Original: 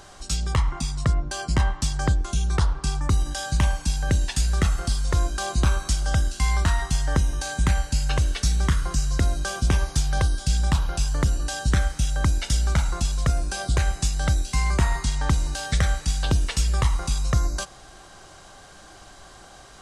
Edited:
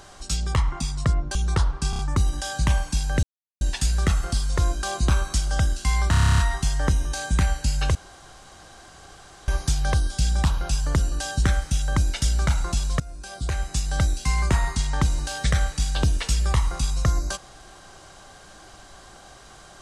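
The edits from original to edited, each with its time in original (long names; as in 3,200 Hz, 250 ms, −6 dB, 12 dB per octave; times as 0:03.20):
0:01.35–0:02.37: remove
0:02.92: stutter 0.03 s, 4 plays
0:04.16: splice in silence 0.38 s
0:06.66: stutter 0.03 s, 10 plays
0:08.23–0:09.76: fill with room tone
0:13.28–0:14.26: fade in, from −19 dB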